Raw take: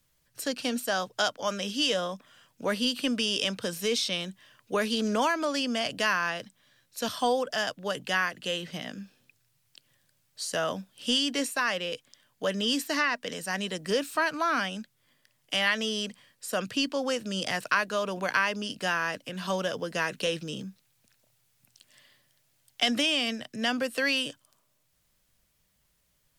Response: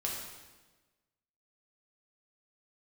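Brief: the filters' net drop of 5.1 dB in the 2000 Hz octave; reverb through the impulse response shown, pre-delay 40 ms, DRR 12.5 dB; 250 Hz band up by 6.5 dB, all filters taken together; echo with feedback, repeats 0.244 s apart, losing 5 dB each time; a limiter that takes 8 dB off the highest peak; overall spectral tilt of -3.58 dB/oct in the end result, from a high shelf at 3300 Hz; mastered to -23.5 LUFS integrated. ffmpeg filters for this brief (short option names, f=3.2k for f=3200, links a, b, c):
-filter_complex "[0:a]equalizer=f=250:t=o:g=7.5,equalizer=f=2k:t=o:g=-9,highshelf=f=3.3k:g=5.5,alimiter=limit=-18.5dB:level=0:latency=1,aecho=1:1:244|488|732|976|1220|1464|1708:0.562|0.315|0.176|0.0988|0.0553|0.031|0.0173,asplit=2[a][b];[1:a]atrim=start_sample=2205,adelay=40[c];[b][c]afir=irnorm=-1:irlink=0,volume=-16dB[d];[a][d]amix=inputs=2:normalize=0,volume=4.5dB"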